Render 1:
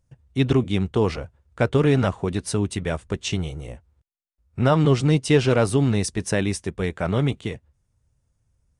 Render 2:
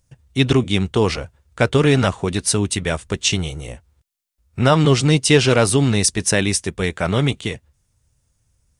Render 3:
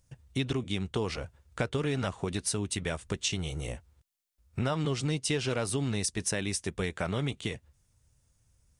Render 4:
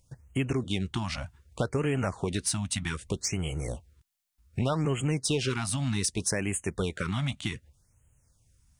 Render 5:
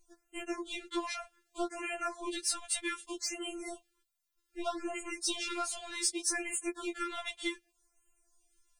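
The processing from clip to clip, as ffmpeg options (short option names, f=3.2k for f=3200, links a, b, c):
-af "highshelf=f=2.1k:g=10,volume=3dB"
-af "acompressor=threshold=-26dB:ratio=4,volume=-3.5dB"
-filter_complex "[0:a]asplit=2[a][b];[b]asoftclip=type=hard:threshold=-27dB,volume=-8dB[c];[a][c]amix=inputs=2:normalize=0,afftfilt=real='re*(1-between(b*sr/1024,370*pow(4700/370,0.5+0.5*sin(2*PI*0.65*pts/sr))/1.41,370*pow(4700/370,0.5+0.5*sin(2*PI*0.65*pts/sr))*1.41))':imag='im*(1-between(b*sr/1024,370*pow(4700/370,0.5+0.5*sin(2*PI*0.65*pts/sr))/1.41,370*pow(4700/370,0.5+0.5*sin(2*PI*0.65*pts/sr))*1.41))':win_size=1024:overlap=0.75"
-af "afftfilt=real='re*4*eq(mod(b,16),0)':imag='im*4*eq(mod(b,16),0)':win_size=2048:overlap=0.75"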